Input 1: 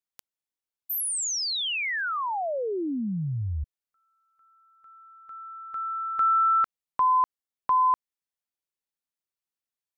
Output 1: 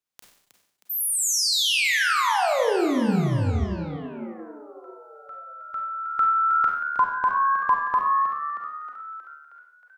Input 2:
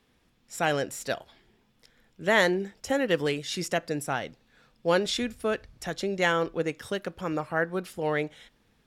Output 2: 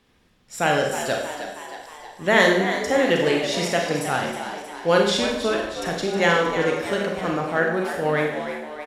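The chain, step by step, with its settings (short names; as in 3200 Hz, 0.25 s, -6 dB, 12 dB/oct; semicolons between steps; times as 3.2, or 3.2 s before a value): high shelf 11000 Hz -5.5 dB; frequency-shifting echo 0.315 s, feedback 60%, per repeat +74 Hz, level -10 dB; Schroeder reverb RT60 0.73 s, combs from 31 ms, DRR 1 dB; gain +4 dB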